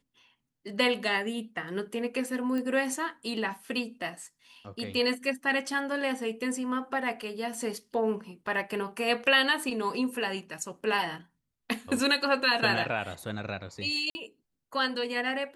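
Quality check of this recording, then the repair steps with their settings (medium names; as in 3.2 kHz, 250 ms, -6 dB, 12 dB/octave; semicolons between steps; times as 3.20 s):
2.58 s: pop -23 dBFS
14.10–14.15 s: dropout 50 ms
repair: de-click; interpolate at 14.10 s, 50 ms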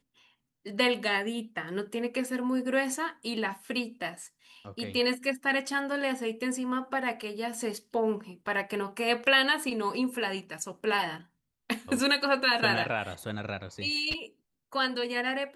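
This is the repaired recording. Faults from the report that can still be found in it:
nothing left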